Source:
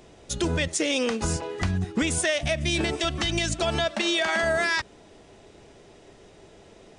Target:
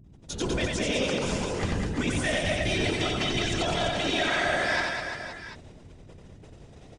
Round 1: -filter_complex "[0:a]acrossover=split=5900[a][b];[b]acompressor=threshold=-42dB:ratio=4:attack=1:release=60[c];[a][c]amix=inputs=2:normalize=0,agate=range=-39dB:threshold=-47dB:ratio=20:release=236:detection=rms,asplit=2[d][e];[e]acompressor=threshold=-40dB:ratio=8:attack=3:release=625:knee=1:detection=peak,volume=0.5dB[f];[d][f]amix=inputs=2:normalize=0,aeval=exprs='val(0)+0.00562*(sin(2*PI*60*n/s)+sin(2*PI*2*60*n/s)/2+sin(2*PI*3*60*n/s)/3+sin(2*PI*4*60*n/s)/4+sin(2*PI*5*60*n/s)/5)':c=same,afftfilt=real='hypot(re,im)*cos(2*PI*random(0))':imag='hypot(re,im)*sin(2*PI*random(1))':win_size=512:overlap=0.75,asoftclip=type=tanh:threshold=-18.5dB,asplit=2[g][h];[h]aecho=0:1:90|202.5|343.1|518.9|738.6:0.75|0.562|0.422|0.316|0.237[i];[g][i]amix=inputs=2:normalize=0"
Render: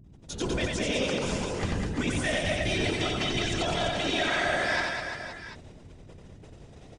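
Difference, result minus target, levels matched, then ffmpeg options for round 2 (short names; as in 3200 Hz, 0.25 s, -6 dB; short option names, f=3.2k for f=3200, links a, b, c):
compressor: peak gain reduction +8 dB
-filter_complex "[0:a]acrossover=split=5900[a][b];[b]acompressor=threshold=-42dB:ratio=4:attack=1:release=60[c];[a][c]amix=inputs=2:normalize=0,agate=range=-39dB:threshold=-47dB:ratio=20:release=236:detection=rms,asplit=2[d][e];[e]acompressor=threshold=-31dB:ratio=8:attack=3:release=625:knee=1:detection=peak,volume=0.5dB[f];[d][f]amix=inputs=2:normalize=0,aeval=exprs='val(0)+0.00562*(sin(2*PI*60*n/s)+sin(2*PI*2*60*n/s)/2+sin(2*PI*3*60*n/s)/3+sin(2*PI*4*60*n/s)/4+sin(2*PI*5*60*n/s)/5)':c=same,afftfilt=real='hypot(re,im)*cos(2*PI*random(0))':imag='hypot(re,im)*sin(2*PI*random(1))':win_size=512:overlap=0.75,asoftclip=type=tanh:threshold=-18.5dB,asplit=2[g][h];[h]aecho=0:1:90|202.5|343.1|518.9|738.6:0.75|0.562|0.422|0.316|0.237[i];[g][i]amix=inputs=2:normalize=0"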